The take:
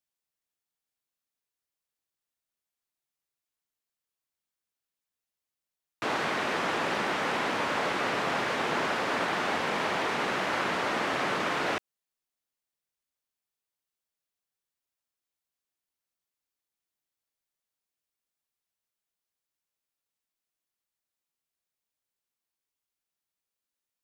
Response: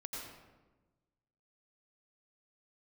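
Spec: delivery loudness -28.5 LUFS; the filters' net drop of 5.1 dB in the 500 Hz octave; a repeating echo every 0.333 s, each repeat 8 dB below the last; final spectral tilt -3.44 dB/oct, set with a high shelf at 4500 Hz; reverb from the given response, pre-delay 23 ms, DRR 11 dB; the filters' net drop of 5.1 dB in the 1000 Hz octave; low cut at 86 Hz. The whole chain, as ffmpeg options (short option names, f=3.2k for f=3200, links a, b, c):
-filter_complex "[0:a]highpass=86,equalizer=f=500:t=o:g=-5,equalizer=f=1k:t=o:g=-5,highshelf=f=4.5k:g=-3.5,aecho=1:1:333|666|999|1332|1665:0.398|0.159|0.0637|0.0255|0.0102,asplit=2[a][b];[1:a]atrim=start_sample=2205,adelay=23[c];[b][c]afir=irnorm=-1:irlink=0,volume=-10dB[d];[a][d]amix=inputs=2:normalize=0,volume=2.5dB"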